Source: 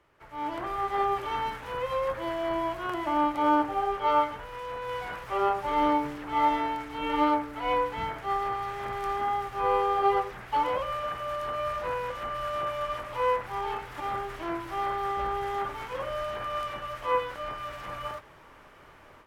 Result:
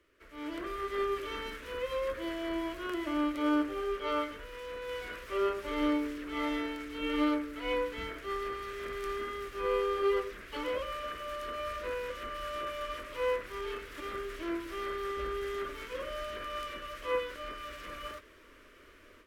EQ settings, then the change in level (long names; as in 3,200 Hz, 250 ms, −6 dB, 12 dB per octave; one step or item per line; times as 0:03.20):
phaser with its sweep stopped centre 340 Hz, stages 4
0.0 dB